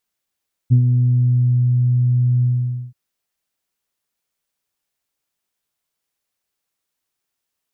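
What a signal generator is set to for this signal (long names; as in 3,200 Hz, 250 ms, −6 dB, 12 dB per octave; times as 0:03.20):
subtractive voice saw B2 24 dB per octave, low-pass 140 Hz, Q 1, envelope 0.5 octaves, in 0.95 s, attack 25 ms, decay 0.09 s, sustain −5 dB, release 0.50 s, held 1.73 s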